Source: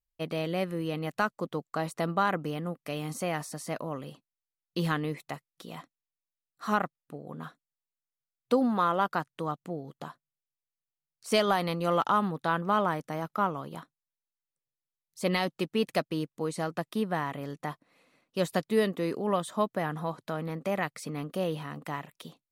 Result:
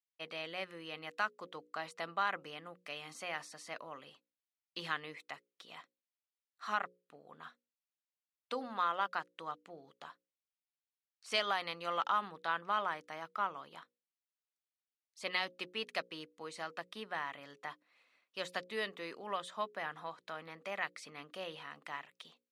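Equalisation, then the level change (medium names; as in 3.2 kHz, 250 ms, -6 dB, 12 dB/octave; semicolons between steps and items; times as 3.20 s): low-pass 2.6 kHz 12 dB/octave; differentiator; hum notches 60/120/180/240/300/360/420/480/540 Hz; +9.5 dB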